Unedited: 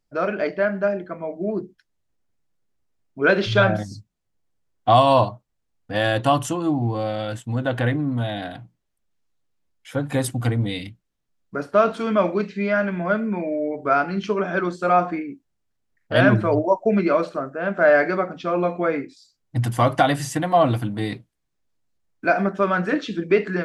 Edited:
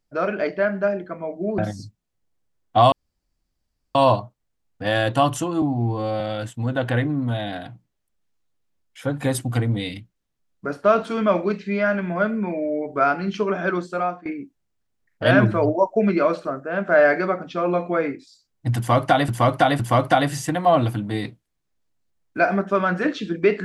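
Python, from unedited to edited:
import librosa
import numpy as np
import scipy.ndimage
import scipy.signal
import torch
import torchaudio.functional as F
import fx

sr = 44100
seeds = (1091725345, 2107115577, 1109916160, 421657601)

y = fx.edit(x, sr, fx.cut(start_s=1.58, length_s=2.12),
    fx.insert_room_tone(at_s=5.04, length_s=1.03),
    fx.stretch_span(start_s=6.71, length_s=0.39, factor=1.5),
    fx.fade_out_to(start_s=14.66, length_s=0.49, floor_db=-22.0),
    fx.repeat(start_s=19.67, length_s=0.51, count=3), tone=tone)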